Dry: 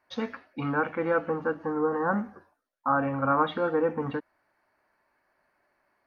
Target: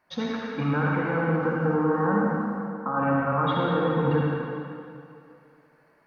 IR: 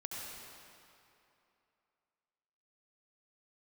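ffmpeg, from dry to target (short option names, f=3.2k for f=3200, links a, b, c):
-filter_complex "[0:a]equalizer=f=170:w=3.9:g=14,alimiter=limit=-22.5dB:level=0:latency=1:release=55[a];[1:a]atrim=start_sample=2205,asetrate=48510,aresample=44100[b];[a][b]afir=irnorm=-1:irlink=0,volume=8dB"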